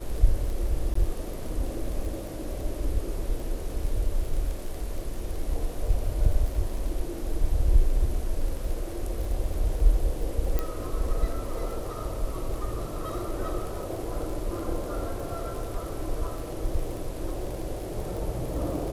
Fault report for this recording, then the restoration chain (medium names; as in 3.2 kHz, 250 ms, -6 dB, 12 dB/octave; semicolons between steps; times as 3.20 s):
crackle 27 per s -33 dBFS
0.94–0.95 s: dropout 14 ms
10.59 s: pop -14 dBFS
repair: de-click; interpolate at 0.94 s, 14 ms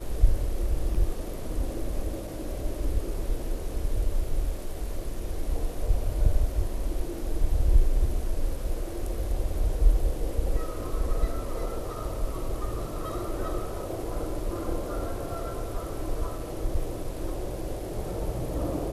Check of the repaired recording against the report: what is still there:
nothing left